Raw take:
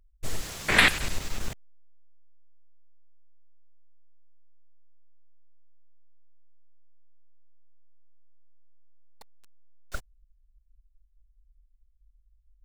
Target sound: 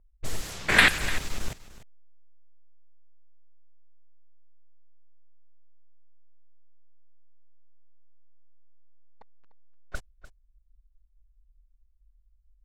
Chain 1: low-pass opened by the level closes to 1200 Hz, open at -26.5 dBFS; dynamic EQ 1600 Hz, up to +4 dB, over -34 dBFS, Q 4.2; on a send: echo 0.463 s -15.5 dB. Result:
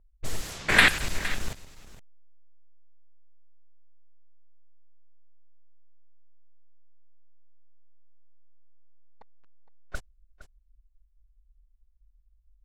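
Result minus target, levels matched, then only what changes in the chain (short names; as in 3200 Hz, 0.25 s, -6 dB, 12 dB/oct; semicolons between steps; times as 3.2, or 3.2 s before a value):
echo 0.166 s late
change: echo 0.297 s -15.5 dB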